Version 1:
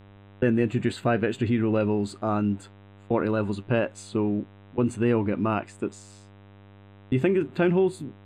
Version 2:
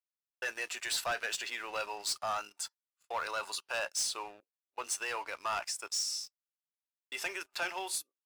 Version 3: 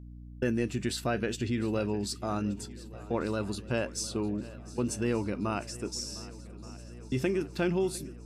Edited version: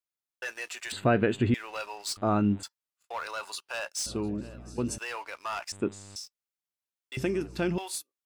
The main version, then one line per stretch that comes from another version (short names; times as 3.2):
2
0.92–1.54 from 1
2.17–2.63 from 1
4.06–4.98 from 3
5.72–6.16 from 1
7.17–7.78 from 3